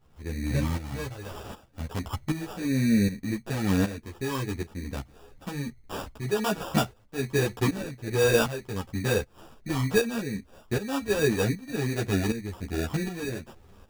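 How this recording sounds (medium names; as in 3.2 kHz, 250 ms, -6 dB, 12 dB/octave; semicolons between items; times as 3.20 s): phasing stages 8, 1.1 Hz, lowest notch 690–4800 Hz; aliases and images of a low sample rate 2.1 kHz, jitter 0%; tremolo saw up 1.3 Hz, depth 75%; a shimmering, thickened sound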